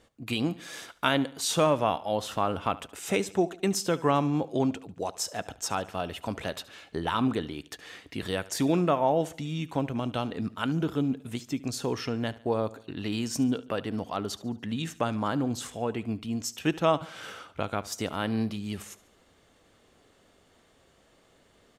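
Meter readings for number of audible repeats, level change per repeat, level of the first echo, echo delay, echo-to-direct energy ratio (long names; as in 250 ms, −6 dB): 3, −6.5 dB, −19.0 dB, 72 ms, −18.0 dB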